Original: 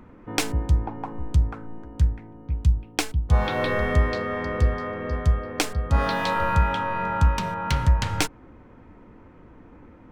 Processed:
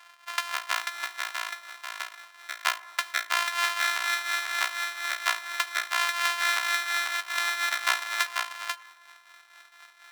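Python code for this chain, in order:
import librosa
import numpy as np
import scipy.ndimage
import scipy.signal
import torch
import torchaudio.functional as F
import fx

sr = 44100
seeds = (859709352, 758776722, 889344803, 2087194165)

y = np.r_[np.sort(x[:len(x) // 128 * 128].reshape(-1, 128), axis=1).ravel(), x[len(x) // 128 * 128:]]
y = fx.level_steps(y, sr, step_db=11, at=(1.71, 2.27))
y = fx.tremolo_shape(y, sr, shape='triangle', hz=4.2, depth_pct=70)
y = y + 10.0 ** (-5.0 / 20.0) * np.pad(y, (int(490 * sr / 1000.0), 0))[:len(y)]
y = fx.over_compress(y, sr, threshold_db=-29.0, ratio=-1.0, at=(7.15, 7.71), fade=0.02)
y = scipy.signal.sosfilt(scipy.signal.butter(4, 1100.0, 'highpass', fs=sr, output='sos'), y)
y = fx.high_shelf(y, sr, hz=5400.0, db=-9.5)
y = fx.rev_fdn(y, sr, rt60_s=1.3, lf_ratio=1.0, hf_ratio=0.3, size_ms=17.0, drr_db=14.5)
y = y * 10.0 ** (7.5 / 20.0)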